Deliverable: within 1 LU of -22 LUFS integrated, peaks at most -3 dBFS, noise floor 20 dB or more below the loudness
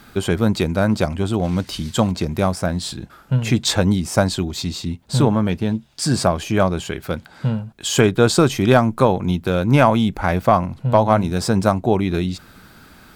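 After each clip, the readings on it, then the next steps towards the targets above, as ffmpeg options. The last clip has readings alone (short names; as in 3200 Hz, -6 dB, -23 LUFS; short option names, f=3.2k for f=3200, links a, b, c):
loudness -19.0 LUFS; peak -1.5 dBFS; loudness target -22.0 LUFS
-> -af "volume=-3dB"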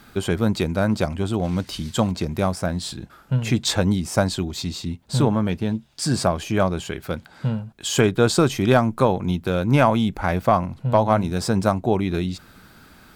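loudness -22.0 LUFS; peak -4.5 dBFS; noise floor -50 dBFS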